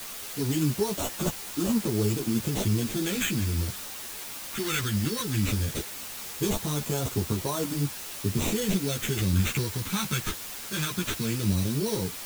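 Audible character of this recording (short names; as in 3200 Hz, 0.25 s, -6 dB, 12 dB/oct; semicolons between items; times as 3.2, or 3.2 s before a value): aliases and images of a low sample rate 4900 Hz, jitter 0%; phasing stages 2, 0.17 Hz, lowest notch 640–1900 Hz; a quantiser's noise floor 6-bit, dither triangular; a shimmering, thickened sound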